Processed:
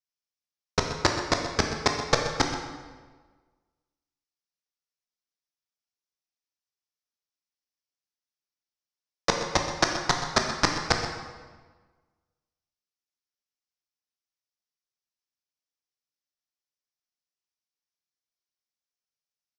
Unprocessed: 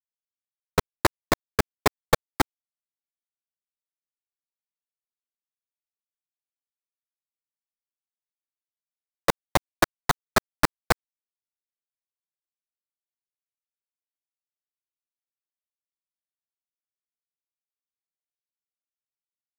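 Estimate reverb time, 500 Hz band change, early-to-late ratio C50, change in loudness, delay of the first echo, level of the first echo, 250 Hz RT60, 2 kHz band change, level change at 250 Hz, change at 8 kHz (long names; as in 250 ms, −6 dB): 1.4 s, −1.0 dB, 4.5 dB, 0.0 dB, 127 ms, −13.0 dB, 1.5 s, −0.5 dB, −1.0 dB, +2.0 dB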